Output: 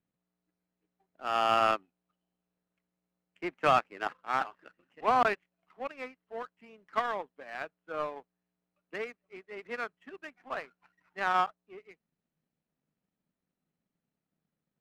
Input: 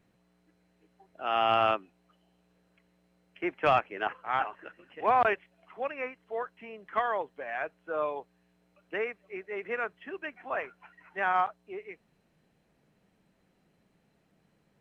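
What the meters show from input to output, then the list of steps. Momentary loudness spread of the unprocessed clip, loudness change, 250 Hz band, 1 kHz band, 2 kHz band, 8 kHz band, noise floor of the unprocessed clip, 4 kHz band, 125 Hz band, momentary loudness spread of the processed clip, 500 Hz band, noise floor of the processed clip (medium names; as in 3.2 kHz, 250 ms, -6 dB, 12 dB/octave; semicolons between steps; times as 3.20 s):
17 LU, -1.0 dB, -1.5 dB, -1.0 dB, -2.5 dB, no reading, -71 dBFS, -0.5 dB, -2.0 dB, 20 LU, -3.0 dB, under -85 dBFS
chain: graphic EQ with 31 bands 160 Hz +6 dB, 250 Hz +7 dB, 1.25 kHz +4 dB; power-law waveshaper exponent 1.4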